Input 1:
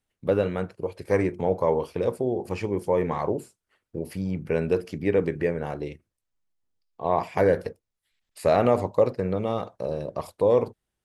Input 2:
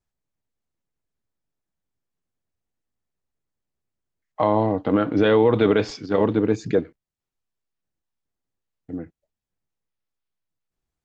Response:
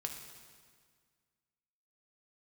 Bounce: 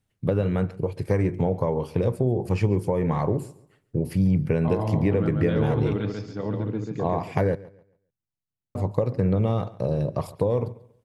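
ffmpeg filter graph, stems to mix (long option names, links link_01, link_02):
-filter_complex "[0:a]acompressor=threshold=-24dB:ratio=6,volume=1.5dB,asplit=3[link_01][link_02][link_03];[link_01]atrim=end=7.55,asetpts=PTS-STARTPTS,afade=type=out:start_time=7.546:duration=0.004:curve=hsin[link_04];[link_02]atrim=start=7.55:end=8.75,asetpts=PTS-STARTPTS,volume=0[link_05];[link_03]atrim=start=8.75,asetpts=PTS-STARTPTS,afade=type=in:duration=0.004:curve=hsin[link_06];[link_04][link_05][link_06]concat=n=3:v=0:a=1,asplit=2[link_07][link_08];[link_08]volume=-20dB[link_09];[1:a]adelay=250,volume=-14dB,asplit=2[link_10][link_11];[link_11]volume=-3.5dB[link_12];[link_09][link_12]amix=inputs=2:normalize=0,aecho=0:1:139|278|417|556:1|0.28|0.0784|0.022[link_13];[link_07][link_10][link_13]amix=inputs=3:normalize=0,equalizer=frequency=120:width=0.95:gain=14"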